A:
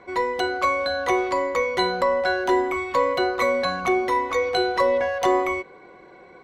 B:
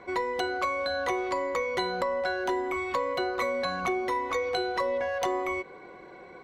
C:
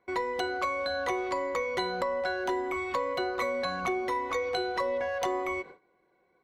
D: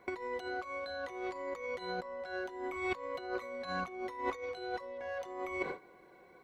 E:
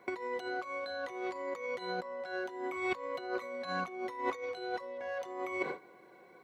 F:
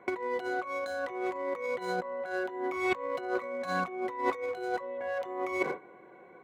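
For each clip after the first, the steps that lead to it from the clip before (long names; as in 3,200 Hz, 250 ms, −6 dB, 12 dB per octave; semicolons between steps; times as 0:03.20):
downward compressor 4 to 1, threshold −27 dBFS, peak gain reduction 10.5 dB
noise gate with hold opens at −34 dBFS; level −1.5 dB
compressor whose output falls as the input rises −38 dBFS, ratio −0.5; level +1 dB
high-pass filter 130 Hz 12 dB per octave; level +1.5 dB
adaptive Wiener filter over 9 samples; level +5 dB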